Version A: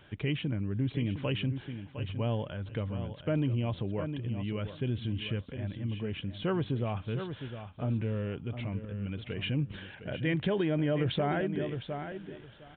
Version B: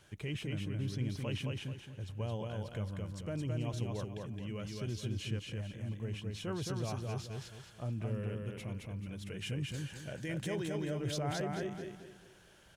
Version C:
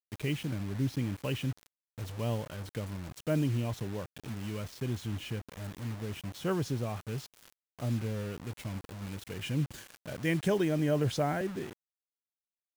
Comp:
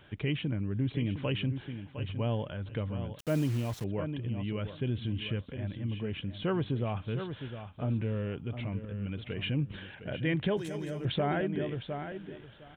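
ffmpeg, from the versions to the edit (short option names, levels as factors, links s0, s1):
-filter_complex "[0:a]asplit=3[s0][s1][s2];[s0]atrim=end=3.192[s3];[2:a]atrim=start=3.188:end=3.842[s4];[s1]atrim=start=3.838:end=10.572[s5];[1:a]atrim=start=10.568:end=11.052[s6];[s2]atrim=start=11.048[s7];[s3][s4]acrossfade=d=0.004:c1=hsin:c2=hsin[s8];[s8][s5]acrossfade=d=0.004:c1=hsin:c2=hsin[s9];[s9][s6]acrossfade=d=0.004:c1=hsin:c2=hsin[s10];[s10][s7]acrossfade=d=0.004:c1=hsin:c2=hsin"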